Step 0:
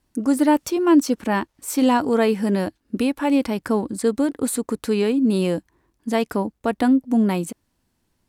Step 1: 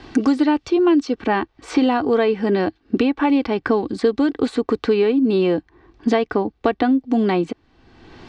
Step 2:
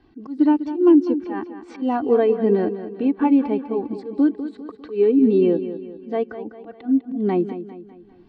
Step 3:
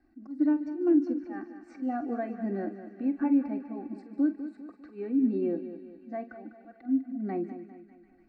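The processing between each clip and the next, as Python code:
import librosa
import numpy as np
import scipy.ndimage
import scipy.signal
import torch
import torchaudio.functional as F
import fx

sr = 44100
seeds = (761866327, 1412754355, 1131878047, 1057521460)

y1 = scipy.signal.sosfilt(scipy.signal.butter(4, 4400.0, 'lowpass', fs=sr, output='sos'), x)
y1 = y1 + 0.46 * np.pad(y1, (int(2.6 * sr / 1000.0), 0))[:len(y1)]
y1 = fx.band_squash(y1, sr, depth_pct=100)
y1 = y1 * librosa.db_to_amplitude(1.5)
y2 = fx.auto_swell(y1, sr, attack_ms=148.0)
y2 = fx.echo_feedback(y2, sr, ms=200, feedback_pct=58, wet_db=-8)
y2 = fx.spectral_expand(y2, sr, expansion=1.5)
y3 = fx.fixed_phaser(y2, sr, hz=660.0, stages=8)
y3 = fx.doubler(y3, sr, ms=46.0, db=-13)
y3 = fx.echo_wet_highpass(y3, sr, ms=148, feedback_pct=84, hz=1900.0, wet_db=-14.5)
y3 = y3 * librosa.db_to_amplitude(-8.5)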